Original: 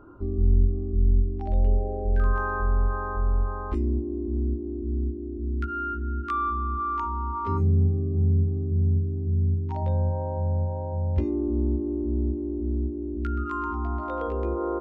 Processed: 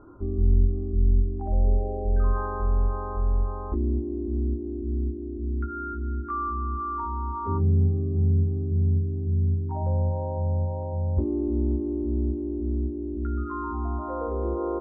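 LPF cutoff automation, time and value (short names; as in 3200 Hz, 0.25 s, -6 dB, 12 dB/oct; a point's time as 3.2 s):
LPF 24 dB/oct
1400 Hz
from 1.33 s 1200 Hz
from 2.46 s 1100 Hz
from 5.22 s 1300 Hz
from 6.15 s 1200 Hz
from 7.88 s 1300 Hz
from 8.86 s 1100 Hz
from 10.83 s 1000 Hz
from 11.71 s 1200 Hz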